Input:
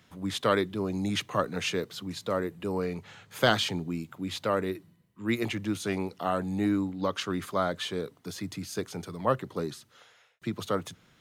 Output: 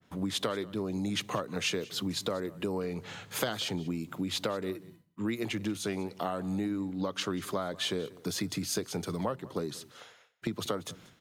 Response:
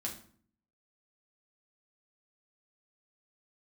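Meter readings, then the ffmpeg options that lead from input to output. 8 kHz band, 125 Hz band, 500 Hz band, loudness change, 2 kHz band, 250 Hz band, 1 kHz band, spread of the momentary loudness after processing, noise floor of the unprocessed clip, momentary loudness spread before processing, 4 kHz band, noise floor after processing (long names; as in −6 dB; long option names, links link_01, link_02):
+3.0 dB, −3.0 dB, −4.5 dB, −3.0 dB, −5.0 dB, −2.5 dB, −6.5 dB, 7 LU, −64 dBFS, 11 LU, −0.5 dB, −61 dBFS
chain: -af "agate=range=-33dB:threshold=-55dB:ratio=3:detection=peak,equalizer=frequency=350:width=0.3:gain=5.5,acompressor=threshold=-32dB:ratio=12,aecho=1:1:188:0.0944,adynamicequalizer=threshold=0.00224:dfrequency=2500:dqfactor=0.7:tfrequency=2500:tqfactor=0.7:attack=5:release=100:ratio=0.375:range=3:mode=boostabove:tftype=highshelf,volume=2.5dB"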